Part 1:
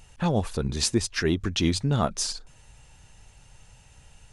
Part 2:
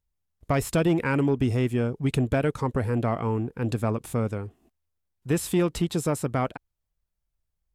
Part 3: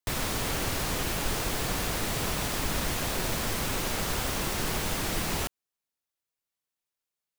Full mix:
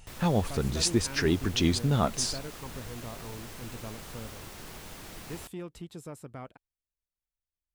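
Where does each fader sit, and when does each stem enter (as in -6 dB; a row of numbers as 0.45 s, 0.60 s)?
-1.5 dB, -17.0 dB, -14.5 dB; 0.00 s, 0.00 s, 0.00 s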